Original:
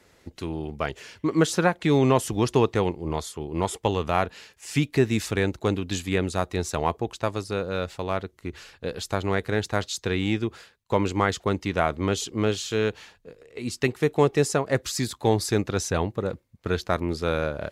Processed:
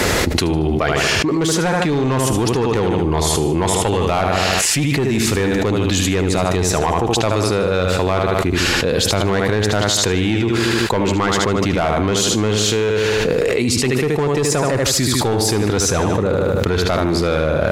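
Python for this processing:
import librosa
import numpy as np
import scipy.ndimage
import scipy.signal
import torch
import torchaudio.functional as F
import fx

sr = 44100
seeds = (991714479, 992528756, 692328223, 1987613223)

p1 = x + fx.echo_feedback(x, sr, ms=76, feedback_pct=45, wet_db=-8.0, dry=0)
p2 = 10.0 ** (-18.0 / 20.0) * np.tanh(p1 / 10.0 ** (-18.0 / 20.0))
p3 = fx.env_flatten(p2, sr, amount_pct=100)
y = p3 * 10.0 ** (4.0 / 20.0)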